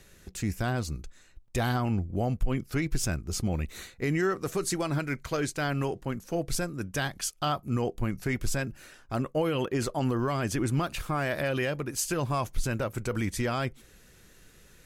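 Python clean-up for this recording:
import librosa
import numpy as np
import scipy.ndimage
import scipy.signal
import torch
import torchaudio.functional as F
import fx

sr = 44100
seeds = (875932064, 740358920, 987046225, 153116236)

y = fx.fix_interpolate(x, sr, at_s=(1.48, 10.87), length_ms=2.8)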